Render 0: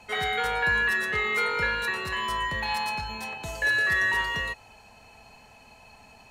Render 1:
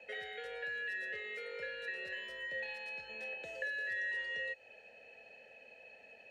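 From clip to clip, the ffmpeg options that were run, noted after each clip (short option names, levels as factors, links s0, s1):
-filter_complex "[0:a]acrossover=split=95|4000[s0][s1][s2];[s0]acompressor=threshold=0.00562:ratio=4[s3];[s1]acompressor=threshold=0.0112:ratio=4[s4];[s2]acompressor=threshold=0.00708:ratio=4[s5];[s3][s4][s5]amix=inputs=3:normalize=0,asplit=3[s6][s7][s8];[s6]bandpass=f=530:t=q:w=8,volume=1[s9];[s7]bandpass=f=1840:t=q:w=8,volume=0.501[s10];[s8]bandpass=f=2480:t=q:w=8,volume=0.355[s11];[s9][s10][s11]amix=inputs=3:normalize=0,volume=2.24"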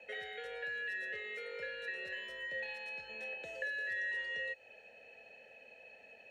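-af "bandreject=f=4800:w=18"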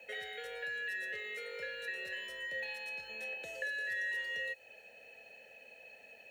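-af "aemphasis=mode=production:type=50fm"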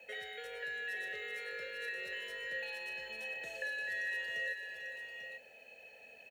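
-af "aecho=1:1:445|843:0.335|0.422,volume=0.841"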